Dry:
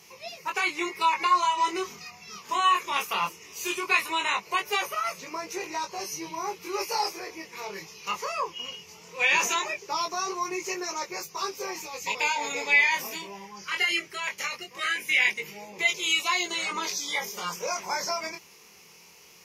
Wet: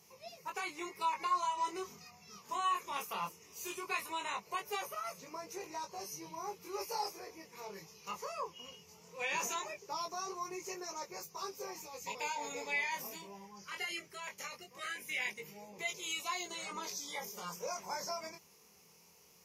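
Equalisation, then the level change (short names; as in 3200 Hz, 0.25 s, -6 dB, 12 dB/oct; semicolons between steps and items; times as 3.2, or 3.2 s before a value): bell 340 Hz -6 dB 0.34 oct; bell 2500 Hz -9.5 dB 2.4 oct; -6.0 dB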